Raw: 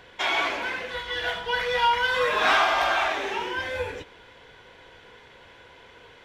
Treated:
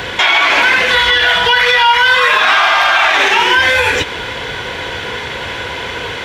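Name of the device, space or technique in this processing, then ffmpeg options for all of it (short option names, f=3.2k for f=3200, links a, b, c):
mastering chain: -filter_complex "[0:a]highpass=52,equalizer=f=500:t=o:w=2.9:g=-3.5,acrossover=split=840|4100[a][b][c];[a]acompressor=threshold=-45dB:ratio=4[d];[b]acompressor=threshold=-26dB:ratio=4[e];[c]acompressor=threshold=-48dB:ratio=4[f];[d][e][f]amix=inputs=3:normalize=0,acompressor=threshold=-40dB:ratio=1.5,alimiter=level_in=30.5dB:limit=-1dB:release=50:level=0:latency=1,volume=-1dB"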